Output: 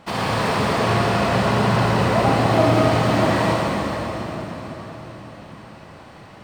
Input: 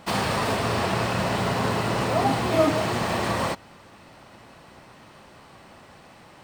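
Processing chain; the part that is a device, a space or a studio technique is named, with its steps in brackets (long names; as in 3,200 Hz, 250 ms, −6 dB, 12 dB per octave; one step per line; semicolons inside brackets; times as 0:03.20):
swimming-pool hall (convolution reverb RT60 4.6 s, pre-delay 50 ms, DRR −4 dB; high-shelf EQ 5,900 Hz −7.5 dB)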